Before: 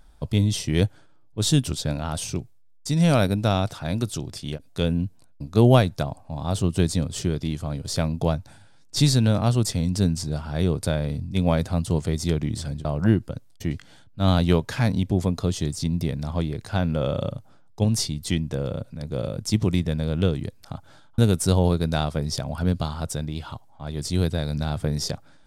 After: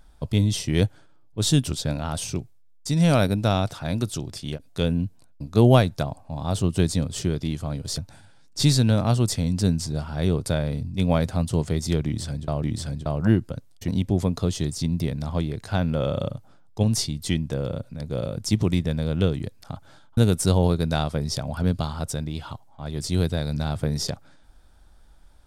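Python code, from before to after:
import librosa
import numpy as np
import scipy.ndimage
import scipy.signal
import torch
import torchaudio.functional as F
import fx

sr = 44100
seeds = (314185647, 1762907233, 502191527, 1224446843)

y = fx.edit(x, sr, fx.cut(start_s=7.98, length_s=0.37),
    fx.repeat(start_s=12.42, length_s=0.58, count=2),
    fx.cut(start_s=13.67, length_s=1.22), tone=tone)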